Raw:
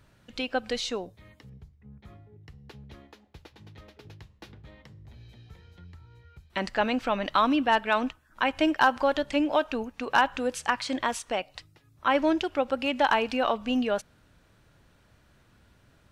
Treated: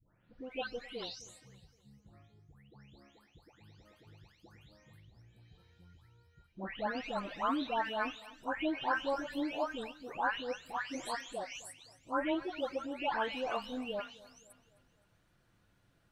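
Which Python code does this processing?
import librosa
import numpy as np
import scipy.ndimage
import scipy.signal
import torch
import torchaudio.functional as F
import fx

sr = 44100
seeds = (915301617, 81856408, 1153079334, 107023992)

y = fx.spec_delay(x, sr, highs='late', ms=508)
y = fx.echo_feedback(y, sr, ms=259, feedback_pct=47, wet_db=-20.0)
y = y * librosa.db_to_amplitude(-9.0)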